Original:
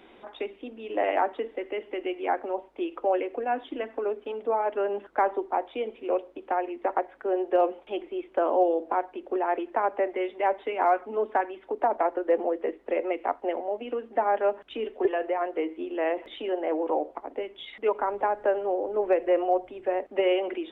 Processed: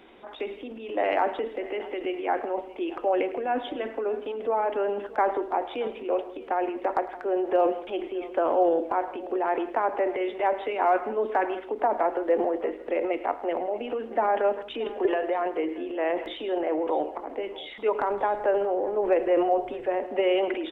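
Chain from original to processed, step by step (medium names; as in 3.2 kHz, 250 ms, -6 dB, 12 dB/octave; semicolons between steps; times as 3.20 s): transient shaper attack 0 dB, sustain +8 dB; multi-tap echo 106/164/628 ms -17.5/-18/-19.5 dB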